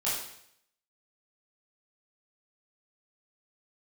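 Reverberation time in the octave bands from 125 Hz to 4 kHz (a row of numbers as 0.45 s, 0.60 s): 0.75 s, 0.70 s, 0.70 s, 0.70 s, 0.70 s, 0.70 s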